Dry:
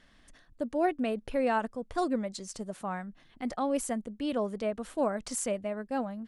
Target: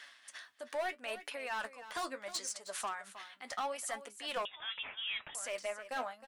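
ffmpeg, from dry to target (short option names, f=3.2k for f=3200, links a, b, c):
-filter_complex "[0:a]highpass=1.2k,asplit=2[a][b];[b]acompressor=threshold=-51dB:ratio=6,volume=2dB[c];[a][c]amix=inputs=2:normalize=0,alimiter=level_in=6.5dB:limit=-24dB:level=0:latency=1:release=12,volume=-6.5dB,tremolo=f=2.5:d=0.67,asoftclip=type=hard:threshold=-38dB,flanger=delay=6.9:depth=4.9:regen=53:speed=0.75:shape=sinusoidal,asplit=2[d][e];[e]aecho=0:1:314:0.211[f];[d][f]amix=inputs=2:normalize=0,asettb=1/sr,asplit=3[g][h][i];[g]atrim=end=4.454[j];[h]atrim=start=4.45:end=5.35,asetpts=PTS-STARTPTS,afade=t=in:d=0.004:c=qsin,afade=t=out:st=0.896:d=0.004:c=qsin,lowpass=f=3.3k:t=q:w=0.5098,lowpass=f=3.3k:t=q:w=0.6013,lowpass=f=3.3k:t=q:w=0.9,lowpass=f=3.3k:t=q:w=2.563,afreqshift=-3900[k];[i]atrim=start=5.346[l];[j][k]acrossfade=d=0.004:c1=hsin:c2=qsin[m];[m][l]acrossfade=d=0.004:c1=qsin:c2=hsin,volume=10.5dB"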